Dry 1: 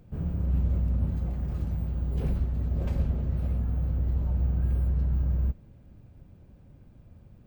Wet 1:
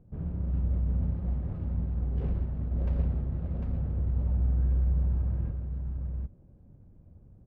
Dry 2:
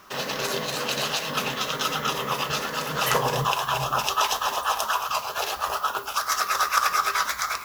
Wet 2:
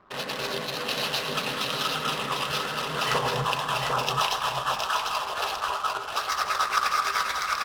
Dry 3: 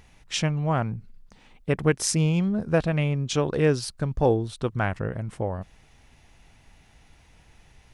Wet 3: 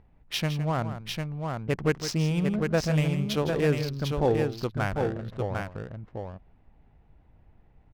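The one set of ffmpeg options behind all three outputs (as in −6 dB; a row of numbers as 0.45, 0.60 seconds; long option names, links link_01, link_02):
-af "highshelf=frequency=7000:width_type=q:width=1.5:gain=-13.5,adynamicsmooth=sensitivity=7.5:basefreq=820,aecho=1:1:161|750:0.266|0.596,volume=-3.5dB"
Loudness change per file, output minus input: −2.0, −2.0, −2.5 LU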